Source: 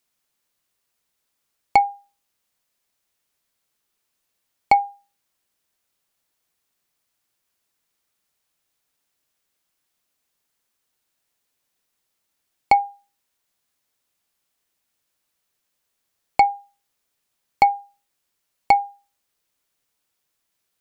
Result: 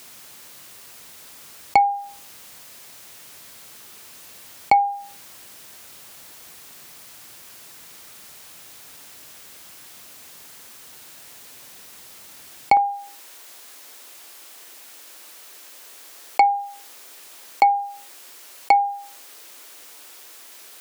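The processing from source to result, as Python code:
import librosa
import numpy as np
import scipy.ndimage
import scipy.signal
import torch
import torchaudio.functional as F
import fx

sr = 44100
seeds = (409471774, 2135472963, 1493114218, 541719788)

y = fx.highpass(x, sr, hz=fx.steps((0.0, 69.0), (12.77, 280.0)), slope=24)
y = fx.env_flatten(y, sr, amount_pct=50)
y = y * 10.0 ** (-1.0 / 20.0)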